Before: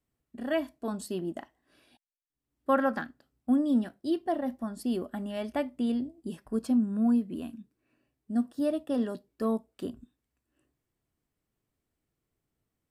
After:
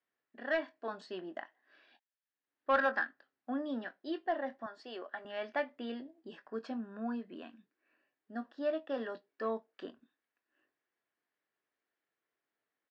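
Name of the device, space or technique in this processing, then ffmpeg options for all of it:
intercom: -filter_complex "[0:a]highpass=500,lowpass=4100,equalizer=frequency=1700:width_type=o:width=0.46:gain=8.5,asoftclip=type=tanh:threshold=-19dB,lowpass=frequency=6200:width=0.5412,lowpass=frequency=6200:width=1.3066,asplit=2[link_01][link_02];[link_02]adelay=22,volume=-11.5dB[link_03];[link_01][link_03]amix=inputs=2:normalize=0,asettb=1/sr,asplit=3[link_04][link_05][link_06];[link_04]atrim=end=4.664[link_07];[link_05]atrim=start=4.66:end=5.25,asetpts=PTS-STARTPTS,afade=type=in:duration=0.004:curve=qsin,afade=type=out:start_time=0.586:duration=0.004:curve=qsin,highpass=430[link_08];[link_06]atrim=start=5.246[link_09];[link_07][link_08]acrossfade=duration=0.004:curve1=hsin:curve2=qsin[link_10];[link_10][link_09]acrossfade=duration=0.004:curve1=qsin:curve2=hsin,highshelf=frequency=8500:gain=-4.5,volume=-1.5dB"

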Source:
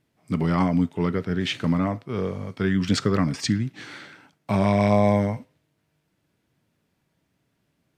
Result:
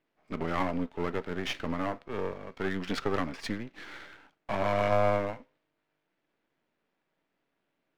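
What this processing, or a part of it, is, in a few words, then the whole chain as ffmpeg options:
crystal radio: -af "highpass=340,lowpass=2900,aeval=exprs='if(lt(val(0),0),0.251*val(0),val(0))':channel_layout=same"

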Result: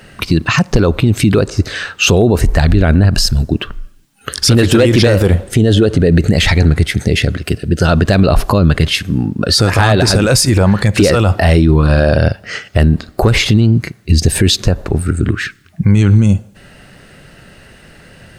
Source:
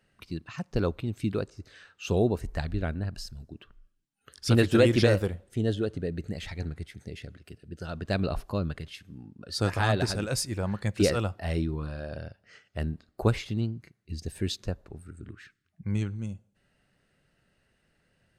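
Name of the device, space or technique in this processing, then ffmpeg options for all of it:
loud club master: -af "acompressor=threshold=-29dB:ratio=2.5,asoftclip=type=hard:threshold=-21dB,alimiter=level_in=31dB:limit=-1dB:release=50:level=0:latency=1,volume=-1dB"

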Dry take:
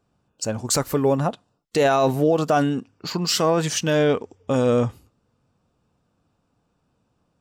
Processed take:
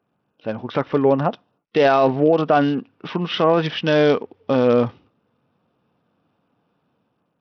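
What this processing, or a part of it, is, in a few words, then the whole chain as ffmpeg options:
Bluetooth headset: -af "highpass=160,dynaudnorm=framelen=250:gausssize=5:maxgain=4dB,aresample=8000,aresample=44100" -ar 44100 -c:a sbc -b:a 64k

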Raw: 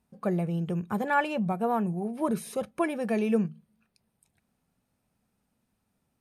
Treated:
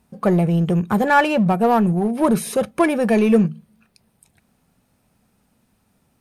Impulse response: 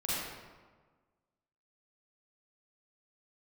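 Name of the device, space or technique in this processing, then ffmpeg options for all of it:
parallel distortion: -filter_complex "[0:a]asplit=2[link_01][link_02];[link_02]asoftclip=type=hard:threshold=-29.5dB,volume=-4dB[link_03];[link_01][link_03]amix=inputs=2:normalize=0,volume=8.5dB"

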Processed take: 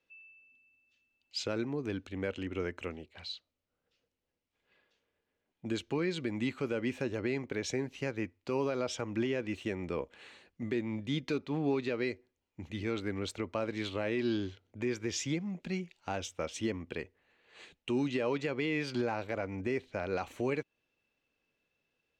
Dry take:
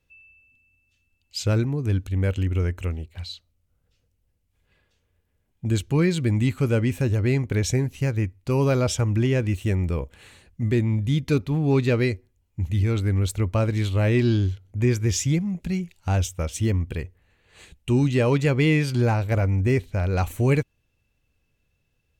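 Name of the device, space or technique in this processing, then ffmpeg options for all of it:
DJ mixer with the lows and highs turned down: -filter_complex "[0:a]acrossover=split=220 6000:gain=0.0794 1 0.1[link_01][link_02][link_03];[link_01][link_02][link_03]amix=inputs=3:normalize=0,alimiter=limit=-20dB:level=0:latency=1:release=189,volume=-3dB"

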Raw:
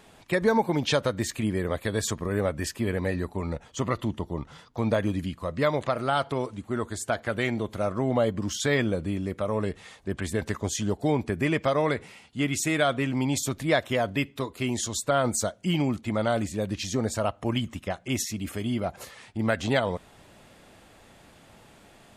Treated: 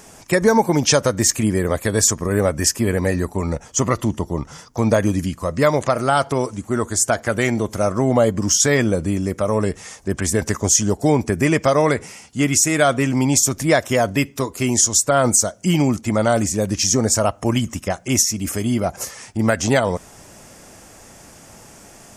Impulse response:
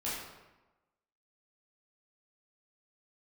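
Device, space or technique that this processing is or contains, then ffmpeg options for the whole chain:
over-bright horn tweeter: -af "highshelf=frequency=4700:width_type=q:width=3:gain=6.5,alimiter=limit=-12.5dB:level=0:latency=1:release=254,volume=8.5dB"

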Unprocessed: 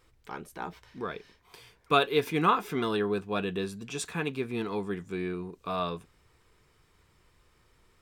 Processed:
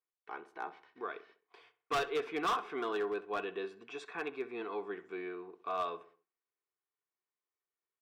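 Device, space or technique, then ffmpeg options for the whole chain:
walkie-talkie: -filter_complex "[0:a]aecho=1:1:2.7:0.4,asettb=1/sr,asplit=3[link_01][link_02][link_03];[link_01]atrim=end=3.924[link_04];[link_02]atrim=start=3.92:end=4.62,asetpts=PTS-STARTPTS,afade=type=in:duration=0.004:curve=qsin,afade=type=out:start_time=0.696:duration=0.004:curve=qsin,bandreject=frequency=3000:width=8.5[link_05];[link_03]atrim=start=4.616[link_06];[link_04][link_05]acrossfade=duration=0.004:curve1=hsin:curve2=qsin[link_07];[link_07][link_06]acrossfade=duration=0.004:curve1=qsin:curve2=hsin,highpass=460,lowpass=2400,asoftclip=type=hard:threshold=-25dB,agate=range=-27dB:threshold=-58dB:ratio=16:detection=peak,asplit=2[link_08][link_09];[link_09]adelay=65,lowpass=frequency=2500:poles=1,volume=-15dB,asplit=2[link_10][link_11];[link_11]adelay=65,lowpass=frequency=2500:poles=1,volume=0.45,asplit=2[link_12][link_13];[link_13]adelay=65,lowpass=frequency=2500:poles=1,volume=0.45,asplit=2[link_14][link_15];[link_15]adelay=65,lowpass=frequency=2500:poles=1,volume=0.45[link_16];[link_08][link_10][link_12][link_14][link_16]amix=inputs=5:normalize=0,volume=-3.5dB"

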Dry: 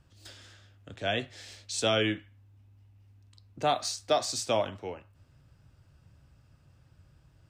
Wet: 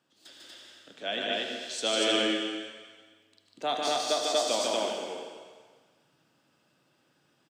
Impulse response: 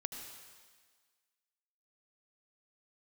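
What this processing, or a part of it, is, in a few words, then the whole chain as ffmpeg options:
stadium PA: -filter_complex "[0:a]highpass=frequency=220:width=0.5412,highpass=frequency=220:width=1.3066,equalizer=frequency=3400:width_type=o:width=0.33:gain=5.5,aecho=1:1:148.7|239.1:0.794|1[link_01];[1:a]atrim=start_sample=2205[link_02];[link_01][link_02]afir=irnorm=-1:irlink=0,volume=-2dB"

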